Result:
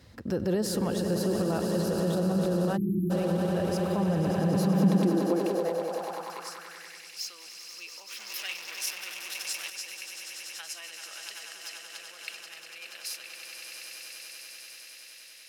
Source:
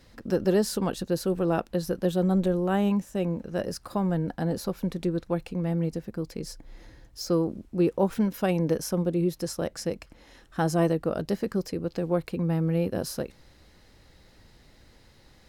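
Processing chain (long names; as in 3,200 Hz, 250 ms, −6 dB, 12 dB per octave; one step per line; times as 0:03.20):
echo that builds up and dies away 96 ms, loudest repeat 8, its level −11 dB
0:08.19–0:09.70: leveller curve on the samples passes 3
brickwall limiter −20 dBFS, peak gain reduction 10.5 dB
high-pass filter sweep 80 Hz → 2,600 Hz, 0:04.17–0:07.16
0:02.77–0:03.11: time-frequency box erased 400–11,000 Hz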